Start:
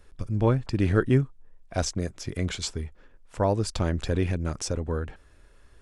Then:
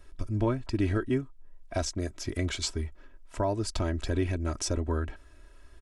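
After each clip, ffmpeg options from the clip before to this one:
-af "aecho=1:1:3.1:0.67,alimiter=limit=-17dB:level=0:latency=1:release=470,volume=-1dB"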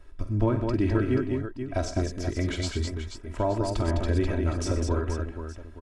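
-af "highshelf=f=3.5k:g=-9,aecho=1:1:48|95|122|206|482|873:0.266|0.188|0.168|0.596|0.355|0.141,volume=2dB"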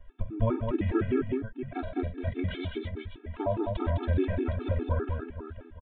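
-af "aresample=8000,aresample=44100,afftfilt=real='re*gt(sin(2*PI*4.9*pts/sr)*(1-2*mod(floor(b*sr/1024/230),2)),0)':imag='im*gt(sin(2*PI*4.9*pts/sr)*(1-2*mod(floor(b*sr/1024/230),2)),0)':win_size=1024:overlap=0.75"

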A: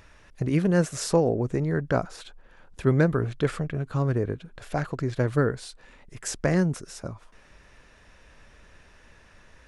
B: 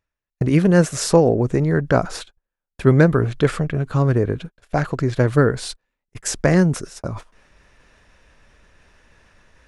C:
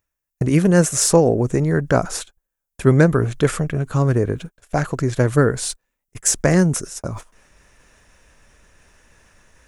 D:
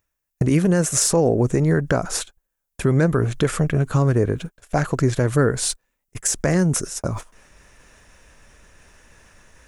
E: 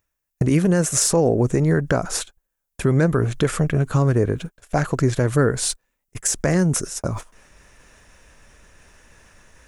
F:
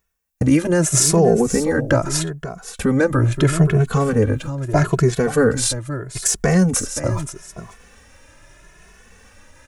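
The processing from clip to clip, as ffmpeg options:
-af "agate=range=-44dB:threshold=-40dB:ratio=16:detection=peak,areverse,acompressor=mode=upward:threshold=-32dB:ratio=2.5,areverse,volume=7.5dB"
-af "aexciter=amount=2.7:drive=6.6:freq=6k"
-af "alimiter=limit=-10.5dB:level=0:latency=1:release=190,volume=2.5dB"
-af anull
-filter_complex "[0:a]aecho=1:1:526:0.237,asplit=2[a][b];[b]adelay=2.3,afreqshift=0.78[c];[a][c]amix=inputs=2:normalize=1,volume=6dB"

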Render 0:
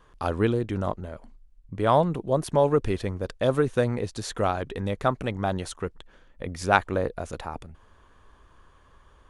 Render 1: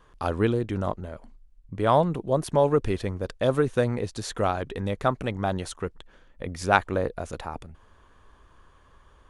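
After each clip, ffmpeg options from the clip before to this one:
-af anull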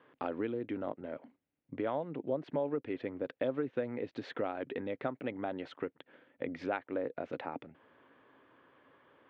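-af "equalizer=f=270:t=o:w=0.45:g=3,acompressor=threshold=-30dB:ratio=5,highpass=f=150:w=0.5412,highpass=f=150:w=1.3066,equalizer=f=190:t=q:w=4:g=-9,equalizer=f=280:t=q:w=4:g=5,equalizer=f=530:t=q:w=4:g=4,equalizer=f=1.1k:t=q:w=4:g=-5,equalizer=f=2.1k:t=q:w=4:g=4,lowpass=f=3.1k:w=0.5412,lowpass=f=3.1k:w=1.3066,volume=-3dB"

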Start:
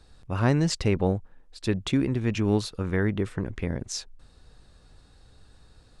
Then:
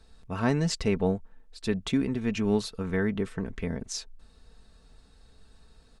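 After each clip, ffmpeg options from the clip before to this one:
-af "aecho=1:1:4.5:0.53,volume=-3dB"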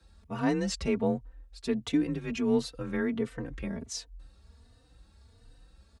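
-filter_complex "[0:a]afreqshift=28,asplit=2[a][b];[b]adelay=3.3,afreqshift=1.4[c];[a][c]amix=inputs=2:normalize=1"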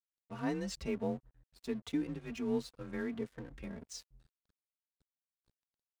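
-af "aeval=exprs='sgn(val(0))*max(abs(val(0))-0.00398,0)':c=same,volume=-7.5dB"

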